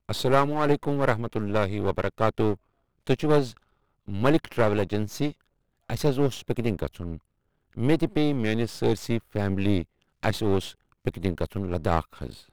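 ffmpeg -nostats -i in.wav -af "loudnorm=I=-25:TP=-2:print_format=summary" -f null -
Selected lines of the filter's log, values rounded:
Input Integrated:    -26.9 LUFS
Input True Peak:      -5.4 dBTP
Input LRA:             2.9 LU
Input Threshold:     -37.4 LUFS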